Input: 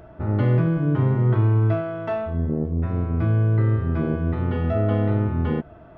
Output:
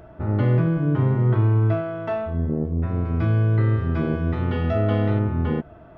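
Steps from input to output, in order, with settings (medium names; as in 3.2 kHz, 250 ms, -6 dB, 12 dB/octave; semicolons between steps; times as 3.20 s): 3.05–5.19 s: treble shelf 2.7 kHz +10.5 dB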